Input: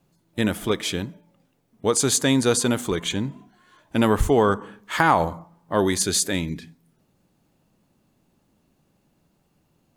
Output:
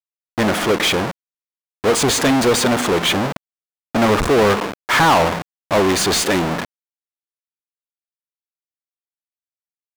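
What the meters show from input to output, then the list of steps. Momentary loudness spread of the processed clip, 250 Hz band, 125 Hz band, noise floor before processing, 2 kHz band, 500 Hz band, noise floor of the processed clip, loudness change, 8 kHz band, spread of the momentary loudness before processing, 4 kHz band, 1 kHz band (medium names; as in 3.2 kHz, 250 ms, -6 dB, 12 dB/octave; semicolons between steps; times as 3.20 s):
11 LU, +4.0 dB, +3.0 dB, -67 dBFS, +8.0 dB, +6.0 dB, under -85 dBFS, +5.5 dB, +2.0 dB, 12 LU, +8.0 dB, +6.5 dB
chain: square wave that keeps the level; bit crusher 6-bit; overdrive pedal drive 28 dB, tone 3 kHz, clips at -2.5 dBFS; trim -3.5 dB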